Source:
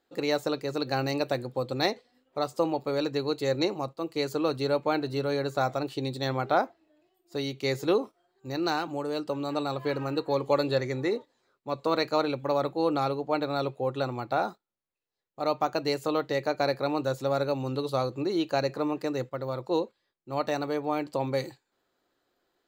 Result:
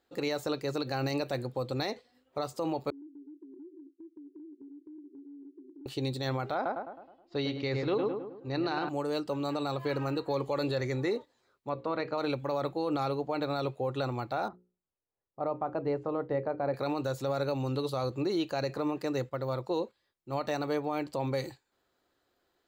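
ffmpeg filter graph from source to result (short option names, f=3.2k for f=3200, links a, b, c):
-filter_complex "[0:a]asettb=1/sr,asplit=3[a][b][c];[a]atrim=end=2.904[d];[b]atrim=start=2.9:end=5.86,asetpts=PTS-STARTPTS,afade=t=in:d=0.004:c=qsin,afade=t=out:st=2.956:d=0.004:c=qsin,asuperpass=centerf=320:order=12:qfactor=3.1,acompressor=threshold=-45dB:ratio=10:attack=3.2:release=140:knee=1:detection=peak[e];[c]atrim=start=5.856[f];[d][e]acrossfade=d=0.004:c1=hsin:c2=qsin[g];[g][f]acrossfade=d=0.004:c1=qsin:c2=hsin,asettb=1/sr,asplit=3[h][i][j];[h]atrim=end=6.554[k];[i]atrim=start=6.55:end=8.89,asetpts=PTS-STARTPTS,afade=t=in:d=0.004:c=qsin,afade=t=out:st=2.336:d=0.004:c=qsin,lowpass=f=4.4k:w=0.5412,lowpass=f=4.4k:w=1.3066,asplit=2[l][m];[m]adelay=105,lowpass=f=1.9k:p=1,volume=-6dB,asplit=2[n][o];[o]adelay=105,lowpass=f=1.9k:p=1,volume=0.5,asplit=2[p][q];[q]adelay=105,lowpass=f=1.9k:p=1,volume=0.5,asplit=2[r][s];[s]adelay=105,lowpass=f=1.9k:p=1,volume=0.5,asplit=2[t][u];[u]adelay=105,lowpass=f=1.9k:p=1,volume=0.5,asplit=2[v][w];[w]adelay=105,lowpass=f=1.9k:p=1,volume=0.5[x];[l][n][p][r][t][v][x]amix=inputs=7:normalize=0,atrim=end_sample=103194[y];[j]atrim=start=8.886[z];[k][y]acrossfade=d=0.004:c1=hsin:c2=qsin[aa];[aa][z]acrossfade=d=0.004:c1=qsin:c2=hsin,asettb=1/sr,asplit=3[ab][ac][ad];[ab]atrim=end=11.694[ae];[ac]atrim=start=11.69:end=12.18,asetpts=PTS-STARTPTS,afade=t=in:d=0.004:c=qsin,afade=t=out:st=0.486:d=0.004:c=qsin,lowpass=2.4k,bandreject=f=60:t=h:w=6,bandreject=f=120:t=h:w=6,bandreject=f=180:t=h:w=6,bandreject=f=240:t=h:w=6,bandreject=f=300:t=h:w=6,bandreject=f=360:t=h:w=6,bandreject=f=420:t=h:w=6,bandreject=f=480:t=h:w=6,bandreject=f=540:t=h:w=6[af];[ad]atrim=start=12.176[ag];[ae][af]acrossfade=d=0.004:c1=hsin:c2=qsin[ah];[ah][ag]acrossfade=d=0.004:c1=qsin:c2=hsin,asettb=1/sr,asplit=3[ai][aj][ak];[ai]atrim=end=14.484[al];[aj]atrim=start=14.48:end=16.74,asetpts=PTS-STARTPTS,afade=t=in:d=0.004:c=qsin,afade=t=out:st=2.256:d=0.004:c=qsin,lowpass=1.1k,bandreject=f=60:t=h:w=6,bandreject=f=120:t=h:w=6,bandreject=f=180:t=h:w=6,bandreject=f=240:t=h:w=6,bandreject=f=300:t=h:w=6,bandreject=f=360:t=h:w=6,bandreject=f=420:t=h:w=6,bandreject=f=480:t=h:w=6,bandreject=f=540:t=h:w=6[am];[ak]atrim=start=16.736[an];[al][am]acrossfade=d=0.004:c1=hsin:c2=qsin[ao];[ao][an]acrossfade=d=0.004:c1=qsin:c2=hsin,equalizer=f=64:w=0.83:g=10,alimiter=limit=-21dB:level=0:latency=1:release=40,lowshelf=f=340:g=-3"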